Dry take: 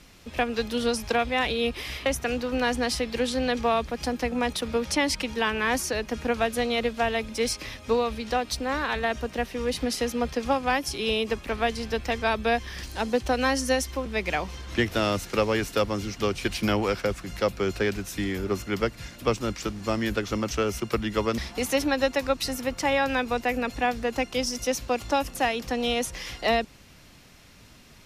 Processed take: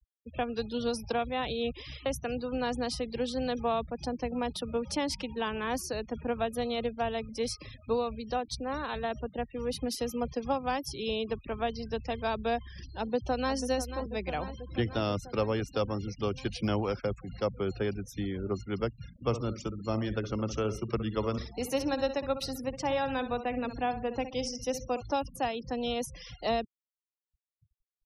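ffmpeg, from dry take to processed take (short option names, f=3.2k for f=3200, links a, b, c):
-filter_complex "[0:a]asettb=1/sr,asplit=3[a][b][c];[a]atrim=end=9.534[d];[b]atrim=start=9.53:end=10.86,asetpts=PTS-STARTPTS,afade=t=in:d=0.004:c=qsin,afade=t=out:st=1.326:d=0.004:c=qsin,highshelf=f=9.5k:g=7[e];[c]atrim=start=10.856[f];[d][e]acrossfade=d=0.004:c1=hsin:c2=qsin[g];[g][f]acrossfade=d=0.004:c1=qsin:c2=hsin,asplit=2[h][i];[i]afade=t=in:st=12.82:d=0.01,afade=t=out:st=13.56:d=0.01,aecho=0:1:490|980|1470|1960|2450|2940|3430|3920|4410|4900|5390|5880:0.298538|0.223904|0.167928|0.125946|0.0944594|0.0708445|0.0531334|0.03985|0.0298875|0.0224157|0.0168117|0.0126088[j];[h][j]amix=inputs=2:normalize=0,asplit=3[k][l][m];[k]afade=t=out:st=19.07:d=0.02[n];[l]aecho=1:1:64|128|192|256:0.282|0.11|0.0429|0.0167,afade=t=in:st=19.07:d=0.02,afade=t=out:st=25:d=0.02[o];[m]afade=t=in:st=25:d=0.02[p];[n][o][p]amix=inputs=3:normalize=0,lowshelf=f=410:g=-4.5,afftfilt=real='re*gte(hypot(re,im),0.0178)':imag='im*gte(hypot(re,im),0.0178)':win_size=1024:overlap=0.75,equalizer=f=125:t=o:w=1:g=8,equalizer=f=2k:t=o:w=1:g=-10,equalizer=f=8k:t=o:w=1:g=-6,volume=-3.5dB"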